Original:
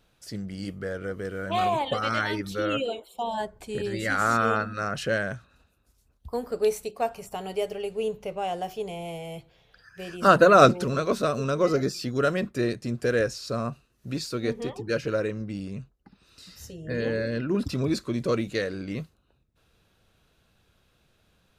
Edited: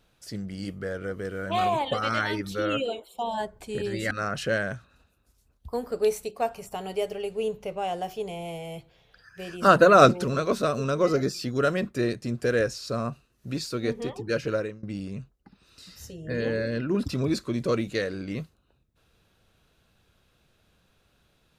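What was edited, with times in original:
4.11–4.71 s: delete
15.14–15.43 s: fade out, to -22.5 dB

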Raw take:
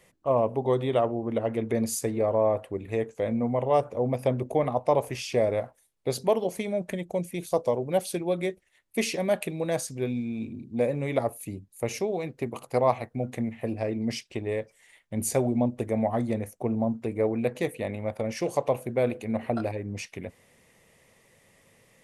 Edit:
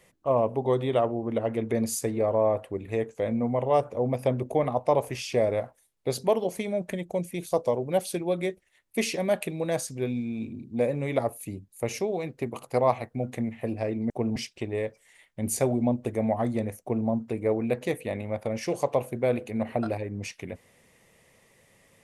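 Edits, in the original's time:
16.55–16.81 s: copy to 14.10 s

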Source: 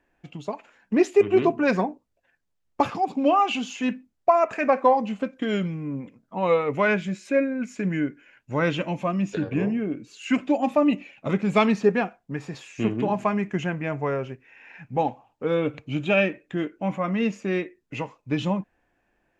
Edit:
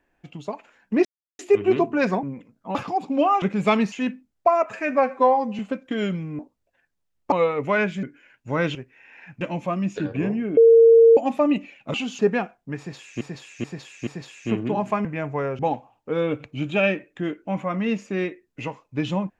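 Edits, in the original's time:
1.05 s: insert silence 0.34 s
1.89–2.82 s: swap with 5.90–6.42 s
3.49–3.74 s: swap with 11.31–11.81 s
4.48–5.10 s: stretch 1.5×
7.13–8.06 s: delete
9.94–10.54 s: bleep 458 Hz -8.5 dBFS
12.40–12.83 s: loop, 4 plays
13.38–13.73 s: delete
14.27–14.93 s: move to 8.78 s

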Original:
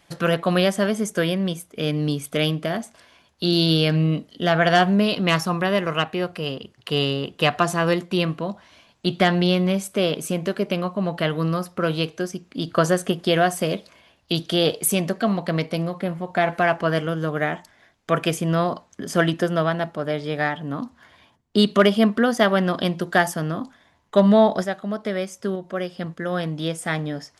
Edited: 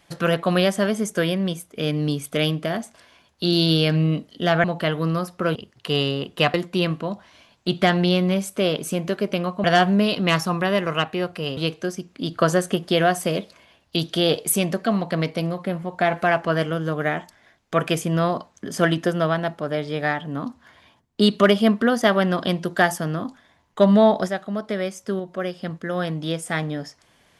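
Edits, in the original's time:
4.64–6.57 s: swap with 11.02–11.93 s
7.56–7.92 s: delete

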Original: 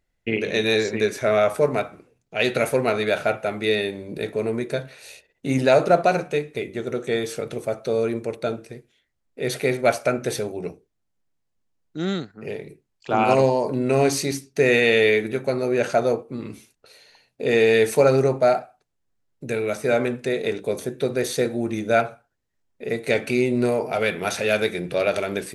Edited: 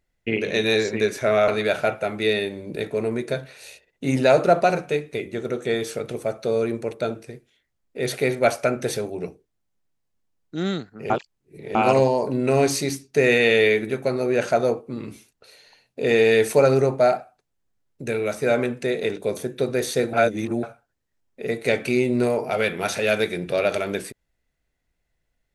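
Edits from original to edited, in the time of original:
1.48–2.90 s: delete
12.52–13.17 s: reverse
21.55–22.05 s: reverse

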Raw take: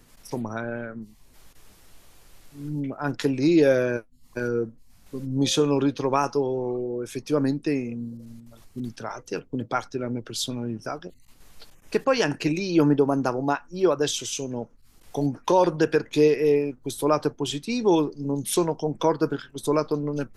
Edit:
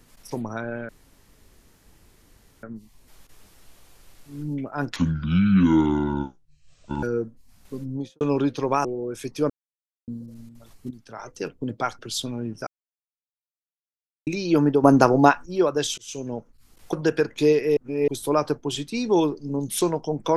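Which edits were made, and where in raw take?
0.89 s: insert room tone 1.74 s
3.22–4.44 s: speed 59%
5.16–5.62 s: studio fade out
6.26–6.76 s: delete
7.41–7.99 s: mute
8.82–9.20 s: fade in quadratic, from -13 dB
9.90–10.23 s: delete
10.91–12.51 s: mute
13.08–13.70 s: gain +9 dB
14.22–14.47 s: fade in
15.17–15.68 s: delete
16.52–16.83 s: reverse

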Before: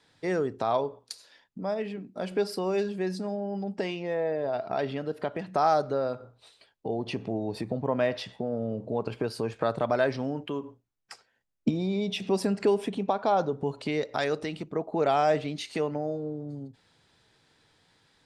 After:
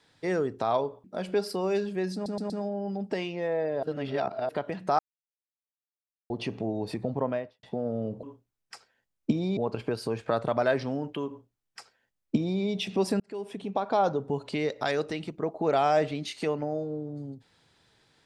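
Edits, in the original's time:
1.04–2.07 s: delete
3.17 s: stutter 0.12 s, 4 plays
4.50–5.16 s: reverse
5.66–6.97 s: mute
7.81–8.30 s: studio fade out
10.61–11.95 s: copy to 8.90 s
12.53–13.27 s: fade in

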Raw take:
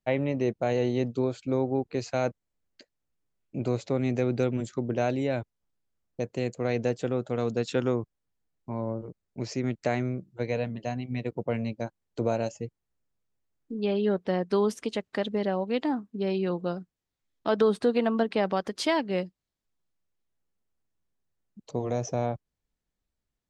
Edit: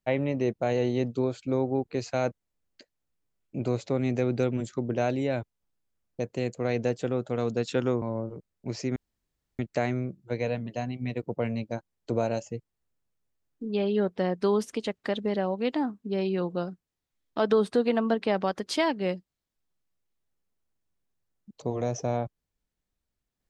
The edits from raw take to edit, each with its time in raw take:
8.02–8.74 s: delete
9.68 s: insert room tone 0.63 s

